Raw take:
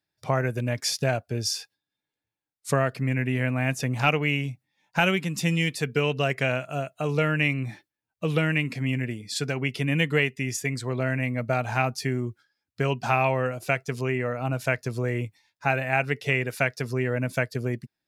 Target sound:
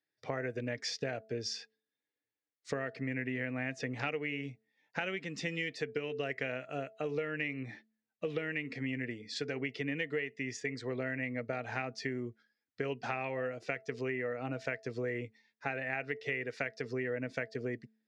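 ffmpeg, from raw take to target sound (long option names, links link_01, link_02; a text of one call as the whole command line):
ffmpeg -i in.wav -af "highpass=140,equalizer=frequency=170:width_type=q:width=4:gain=-6,equalizer=frequency=280:width_type=q:width=4:gain=5,equalizer=frequency=460:width_type=q:width=4:gain=9,equalizer=frequency=990:width_type=q:width=4:gain=-5,equalizer=frequency=1900:width_type=q:width=4:gain=9,lowpass=frequency=5900:width=0.5412,lowpass=frequency=5900:width=1.3066,acompressor=threshold=-24dB:ratio=6,bandreject=frequency=220:width_type=h:width=4,bandreject=frequency=440:width_type=h:width=4,bandreject=frequency=660:width_type=h:width=4,volume=-8dB" out.wav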